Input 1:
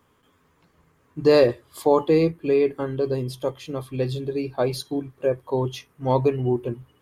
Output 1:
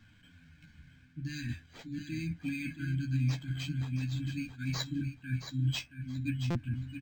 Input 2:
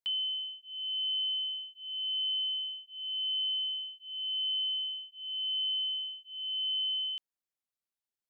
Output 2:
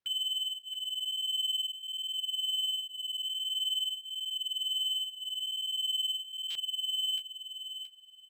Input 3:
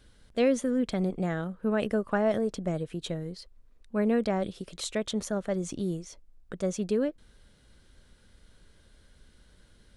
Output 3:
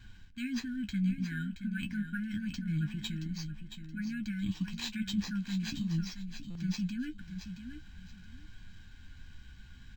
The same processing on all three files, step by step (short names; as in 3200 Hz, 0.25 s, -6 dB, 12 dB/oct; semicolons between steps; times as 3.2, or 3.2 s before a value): comb 1.3 ms, depth 88%; reverse; compressor 6:1, threshold -33 dBFS; reverse; small resonant body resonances 840/2600 Hz, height 11 dB; flange 0.46 Hz, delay 9.1 ms, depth 7 ms, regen +32%; brick-wall FIR band-stop 330–1400 Hz; on a send: feedback echo 0.674 s, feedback 23%, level -9 dB; on the sum: stuck buffer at 6.5, samples 256, times 8; decimation joined by straight lines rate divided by 4×; gain +6.5 dB